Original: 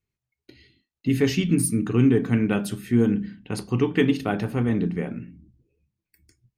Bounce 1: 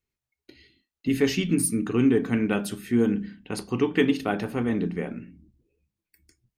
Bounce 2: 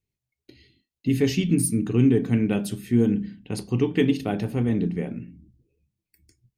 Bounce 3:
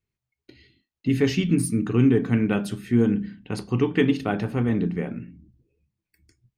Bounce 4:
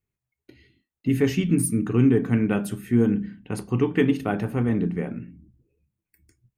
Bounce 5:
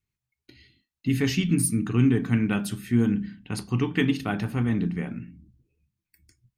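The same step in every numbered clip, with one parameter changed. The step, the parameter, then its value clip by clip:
peaking EQ, frequency: 120 Hz, 1.3 kHz, 14 kHz, 4.4 kHz, 480 Hz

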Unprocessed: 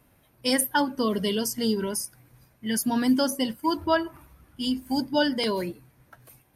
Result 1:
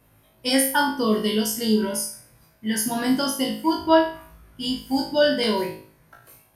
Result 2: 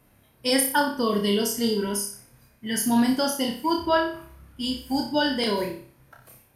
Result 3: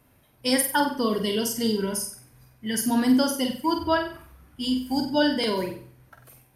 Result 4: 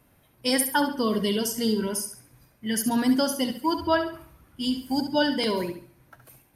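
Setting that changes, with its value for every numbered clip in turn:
flutter echo, walls apart: 3.2 m, 5.1 m, 8.1 m, 11.8 m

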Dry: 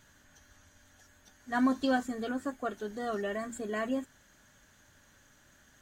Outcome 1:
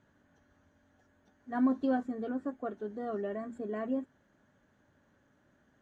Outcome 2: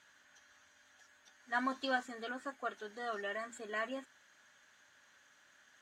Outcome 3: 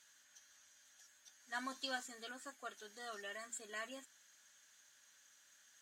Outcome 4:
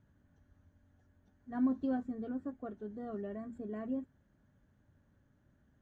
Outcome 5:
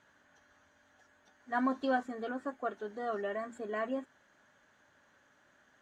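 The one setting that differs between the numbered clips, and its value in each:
band-pass filter, frequency: 310 Hz, 2.1 kHz, 6.4 kHz, 110 Hz, 830 Hz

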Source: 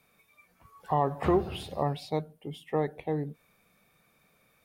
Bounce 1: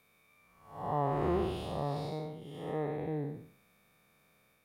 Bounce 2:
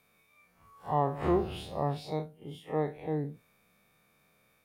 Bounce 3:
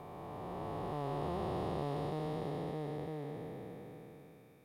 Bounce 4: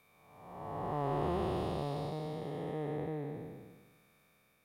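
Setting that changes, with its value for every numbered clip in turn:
spectral blur, width: 262 ms, 87 ms, 1680 ms, 675 ms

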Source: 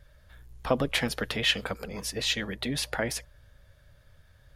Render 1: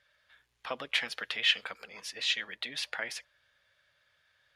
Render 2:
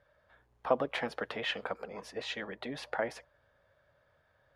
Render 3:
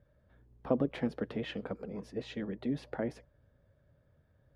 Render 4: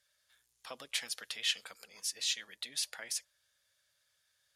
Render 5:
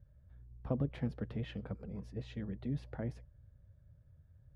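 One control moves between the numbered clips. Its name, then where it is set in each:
band-pass filter, frequency: 2.6 kHz, 800 Hz, 280 Hz, 7.4 kHz, 110 Hz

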